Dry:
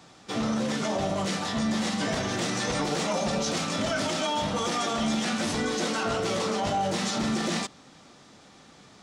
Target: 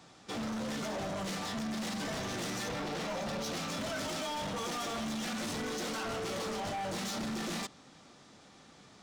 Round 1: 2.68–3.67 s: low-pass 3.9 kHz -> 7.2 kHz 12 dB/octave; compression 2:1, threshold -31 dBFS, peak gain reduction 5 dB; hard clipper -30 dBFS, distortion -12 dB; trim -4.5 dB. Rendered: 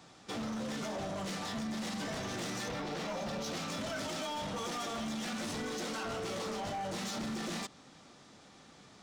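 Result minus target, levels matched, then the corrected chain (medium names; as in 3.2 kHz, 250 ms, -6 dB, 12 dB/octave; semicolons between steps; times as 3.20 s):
compression: peak gain reduction +5 dB
2.68–3.67 s: low-pass 3.9 kHz -> 7.2 kHz 12 dB/octave; hard clipper -30 dBFS, distortion -8 dB; trim -4.5 dB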